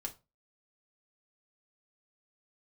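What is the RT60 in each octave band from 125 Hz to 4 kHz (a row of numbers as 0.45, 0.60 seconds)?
0.35, 0.30, 0.30, 0.25, 0.20, 0.20 seconds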